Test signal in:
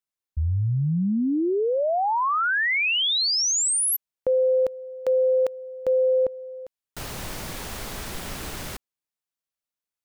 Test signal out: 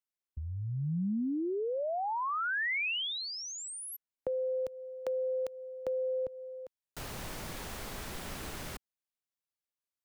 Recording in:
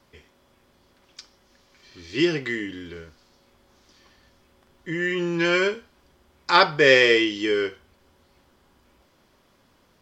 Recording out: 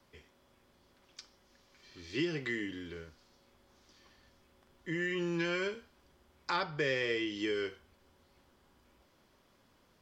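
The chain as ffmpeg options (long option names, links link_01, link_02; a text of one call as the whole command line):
ffmpeg -i in.wav -filter_complex "[0:a]acrossover=split=160|2700[link_01][link_02][link_03];[link_01]acompressor=threshold=-34dB:ratio=4[link_04];[link_02]acompressor=threshold=-26dB:ratio=4[link_05];[link_03]acompressor=threshold=-38dB:ratio=4[link_06];[link_04][link_05][link_06]amix=inputs=3:normalize=0,volume=-6.5dB" out.wav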